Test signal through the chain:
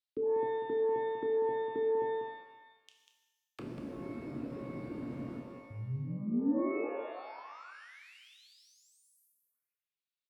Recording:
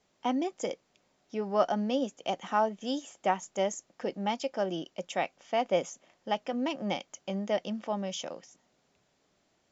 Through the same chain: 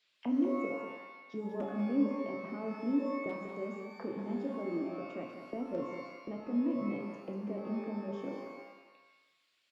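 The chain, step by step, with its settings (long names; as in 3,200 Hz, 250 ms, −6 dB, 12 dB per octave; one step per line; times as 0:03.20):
reverb reduction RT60 1.1 s
thirty-one-band graphic EQ 125 Hz +12 dB, 800 Hz −12 dB, 3,150 Hz −7 dB, 6,300 Hz −10 dB
in parallel at 0 dB: compressor whose output falls as the input rises −42 dBFS, ratio −1
on the sum: wrap-around overflow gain 16 dB
envelope filter 280–3,600 Hz, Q 3, down, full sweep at −34.5 dBFS
double-tracking delay 29 ms −12.5 dB
on a send: single-tap delay 193 ms −8 dB
on the sum: reverb with rising layers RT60 1.1 s, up +12 semitones, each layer −8 dB, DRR 3 dB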